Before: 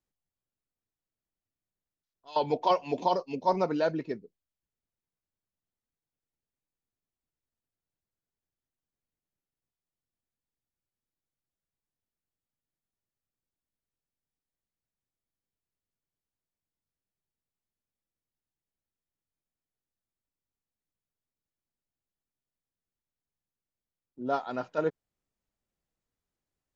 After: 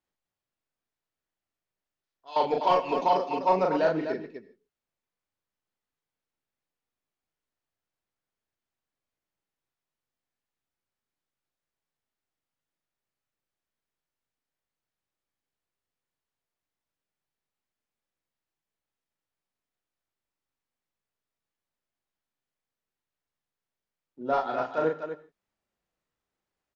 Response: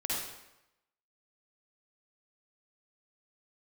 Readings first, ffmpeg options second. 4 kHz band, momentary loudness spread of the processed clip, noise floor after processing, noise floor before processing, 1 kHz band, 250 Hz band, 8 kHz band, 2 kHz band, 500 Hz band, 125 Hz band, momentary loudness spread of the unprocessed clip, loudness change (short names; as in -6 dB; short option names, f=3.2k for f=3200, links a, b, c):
+1.5 dB, 13 LU, under -85 dBFS, under -85 dBFS, +4.0 dB, +1.0 dB, n/a, +5.0 dB, +3.5 dB, -0.5 dB, 9 LU, +3.5 dB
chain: -filter_complex "[0:a]asplit=2[a][b];[b]highpass=f=720:p=1,volume=10dB,asoftclip=type=tanh:threshold=-13.5dB[c];[a][c]amix=inputs=2:normalize=0,lowpass=f=2.3k:p=1,volume=-6dB,aecho=1:1:37.9|250.7:0.708|0.398,asplit=2[d][e];[1:a]atrim=start_sample=2205,afade=t=out:st=0.2:d=0.01,atrim=end_sample=9261,adelay=20[f];[e][f]afir=irnorm=-1:irlink=0,volume=-19.5dB[g];[d][g]amix=inputs=2:normalize=0"